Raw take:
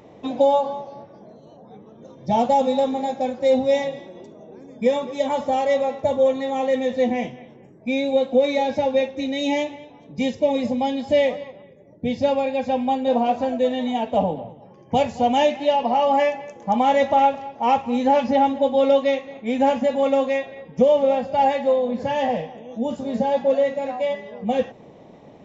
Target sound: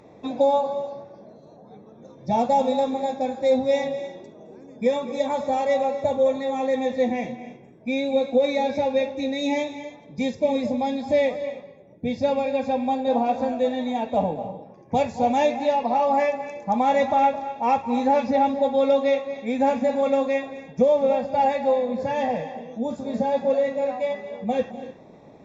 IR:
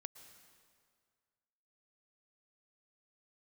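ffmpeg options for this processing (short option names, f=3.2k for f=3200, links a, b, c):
-filter_complex "[0:a]asuperstop=centerf=3000:order=8:qfactor=7.1[a];[1:a]atrim=start_sample=2205,afade=t=out:st=0.21:d=0.01,atrim=end_sample=9702,asetrate=22932,aresample=44100[b];[a][b]afir=irnorm=-1:irlink=0"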